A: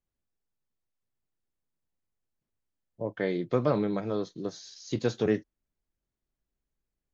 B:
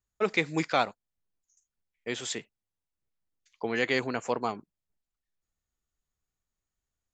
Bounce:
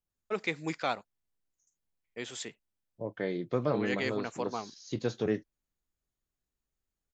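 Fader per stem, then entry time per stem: -4.0 dB, -6.0 dB; 0.00 s, 0.10 s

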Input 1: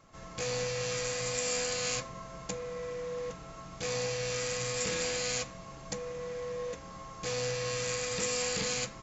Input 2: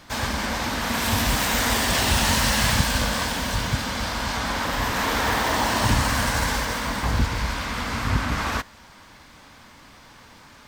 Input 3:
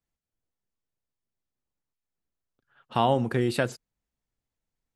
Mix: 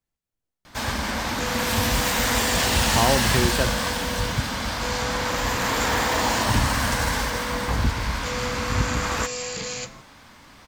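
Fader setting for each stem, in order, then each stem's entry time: +1.5 dB, -0.5 dB, +1.0 dB; 1.00 s, 0.65 s, 0.00 s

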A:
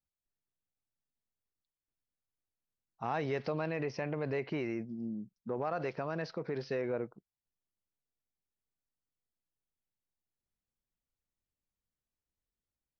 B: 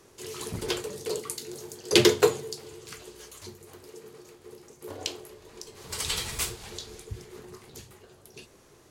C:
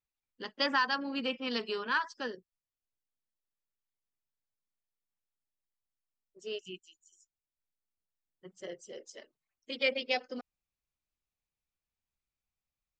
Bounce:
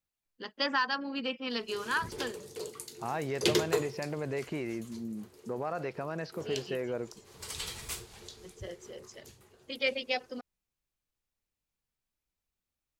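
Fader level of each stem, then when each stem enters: 0.0 dB, -8.5 dB, -0.5 dB; 0.00 s, 1.50 s, 0.00 s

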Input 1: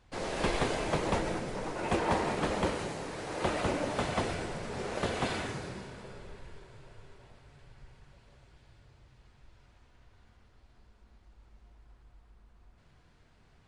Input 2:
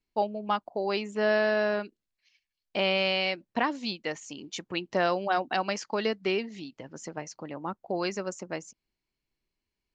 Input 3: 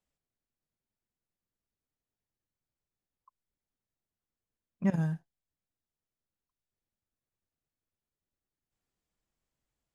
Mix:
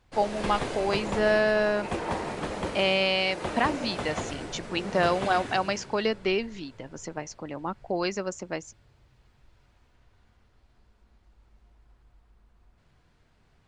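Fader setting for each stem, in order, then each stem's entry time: -1.5 dB, +2.0 dB, -10.5 dB; 0.00 s, 0.00 s, 0.00 s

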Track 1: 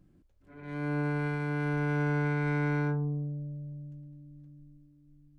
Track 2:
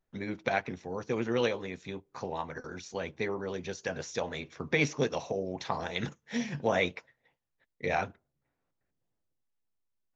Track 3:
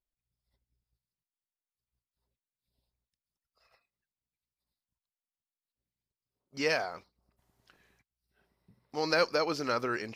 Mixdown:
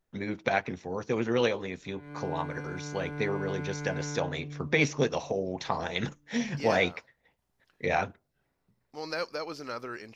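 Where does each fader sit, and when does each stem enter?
-8.0 dB, +2.5 dB, -6.5 dB; 1.35 s, 0.00 s, 0.00 s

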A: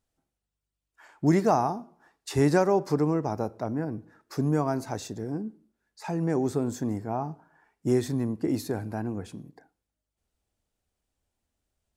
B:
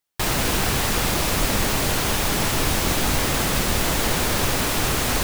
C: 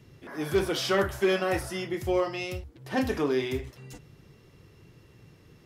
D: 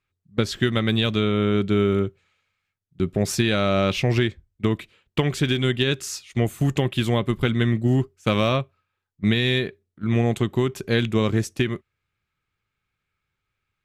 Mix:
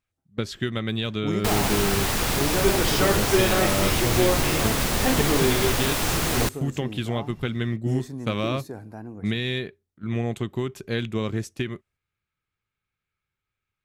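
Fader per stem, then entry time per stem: -6.5 dB, -2.5 dB, +2.5 dB, -6.0 dB; 0.00 s, 1.25 s, 2.10 s, 0.00 s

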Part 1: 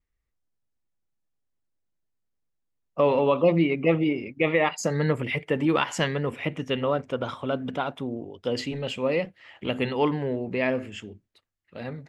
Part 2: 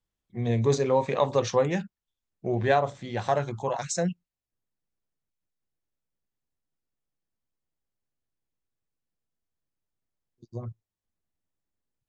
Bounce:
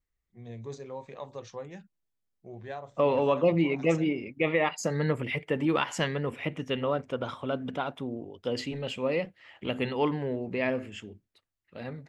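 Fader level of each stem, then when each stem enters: -3.5 dB, -17.0 dB; 0.00 s, 0.00 s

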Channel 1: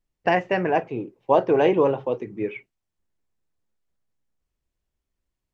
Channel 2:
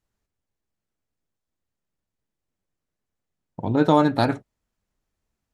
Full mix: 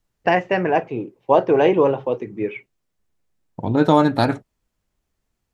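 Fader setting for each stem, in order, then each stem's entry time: +3.0 dB, +2.5 dB; 0.00 s, 0.00 s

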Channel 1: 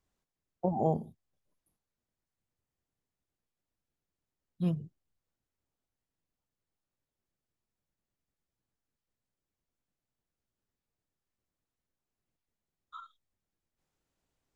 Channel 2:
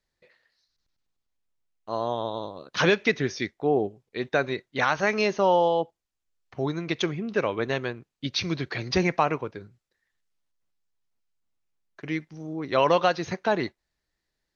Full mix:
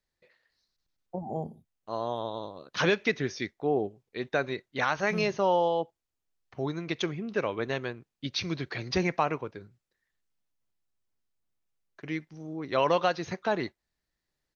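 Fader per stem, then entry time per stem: -5.5 dB, -4.0 dB; 0.50 s, 0.00 s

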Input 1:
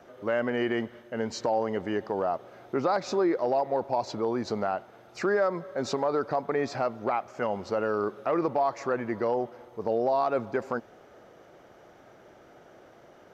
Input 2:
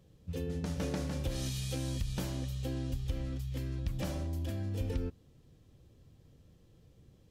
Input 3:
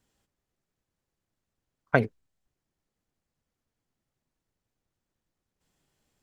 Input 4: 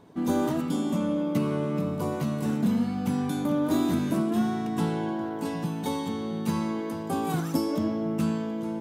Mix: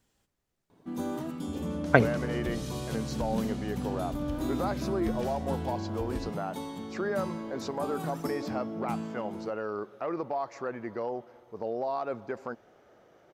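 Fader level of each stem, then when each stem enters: -6.5 dB, -3.0 dB, +2.0 dB, -8.5 dB; 1.75 s, 1.20 s, 0.00 s, 0.70 s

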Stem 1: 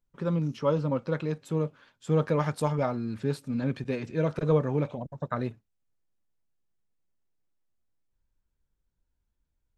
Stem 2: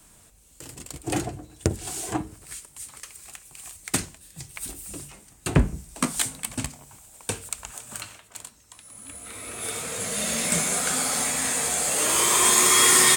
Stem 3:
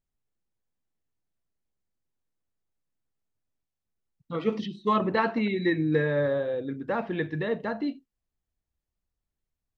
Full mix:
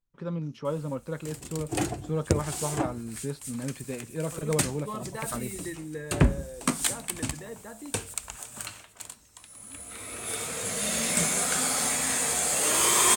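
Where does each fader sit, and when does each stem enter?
-5.0 dB, -1.5 dB, -13.0 dB; 0.00 s, 0.65 s, 0.00 s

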